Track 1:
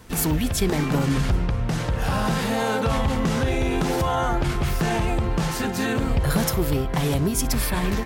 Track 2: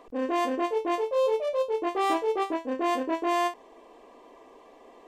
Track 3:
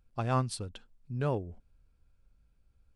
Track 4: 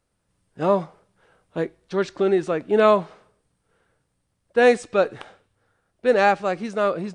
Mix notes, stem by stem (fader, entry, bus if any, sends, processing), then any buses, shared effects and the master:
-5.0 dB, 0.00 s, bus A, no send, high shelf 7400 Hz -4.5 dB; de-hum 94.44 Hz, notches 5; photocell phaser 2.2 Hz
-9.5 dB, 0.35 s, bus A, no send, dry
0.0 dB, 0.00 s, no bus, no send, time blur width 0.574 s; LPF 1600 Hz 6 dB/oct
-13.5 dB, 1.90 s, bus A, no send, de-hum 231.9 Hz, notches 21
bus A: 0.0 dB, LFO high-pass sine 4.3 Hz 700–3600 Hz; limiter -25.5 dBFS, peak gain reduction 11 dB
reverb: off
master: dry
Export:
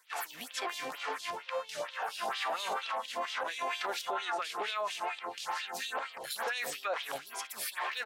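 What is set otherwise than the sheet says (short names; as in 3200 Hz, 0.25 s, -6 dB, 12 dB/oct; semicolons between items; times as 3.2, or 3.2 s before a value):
stem 3: muted; stem 4 -13.5 dB -> -3.0 dB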